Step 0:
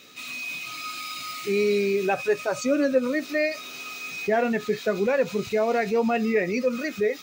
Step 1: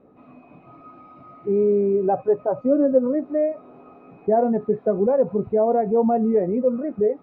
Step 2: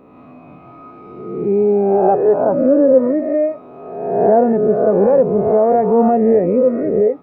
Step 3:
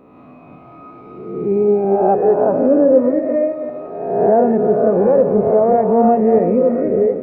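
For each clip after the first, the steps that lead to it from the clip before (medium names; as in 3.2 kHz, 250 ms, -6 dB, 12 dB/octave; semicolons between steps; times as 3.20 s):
Chebyshev low-pass 830 Hz, order 3; trim +5 dB
reverse spectral sustain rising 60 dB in 1.14 s; trim +4.5 dB
backward echo that repeats 168 ms, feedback 56%, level -9 dB; trim -1 dB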